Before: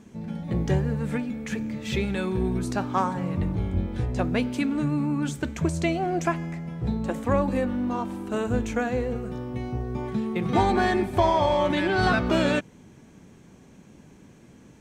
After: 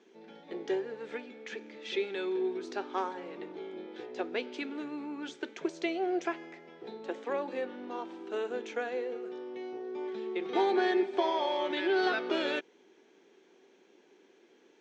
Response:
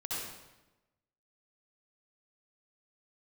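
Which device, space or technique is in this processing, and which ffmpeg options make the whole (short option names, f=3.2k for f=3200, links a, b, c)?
phone speaker on a table: -af "lowpass=5.7k,highpass=f=360:w=0.5412,highpass=f=360:w=1.3066,equalizer=f=380:t=q:w=4:g=8,equalizer=f=610:t=q:w=4:g=-5,equalizer=f=1.1k:t=q:w=4:g=-6,equalizer=f=3.4k:t=q:w=4:g=4,lowpass=f=6.6k:w=0.5412,lowpass=f=6.6k:w=1.3066,volume=-6dB"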